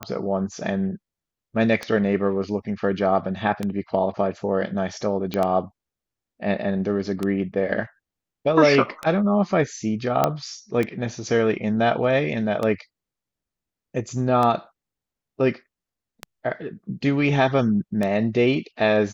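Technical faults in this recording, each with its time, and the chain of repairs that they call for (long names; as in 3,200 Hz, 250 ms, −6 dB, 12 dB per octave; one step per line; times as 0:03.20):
scratch tick 33 1/3 rpm −12 dBFS
0:05.34: click −12 dBFS
0:10.24: click −5 dBFS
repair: click removal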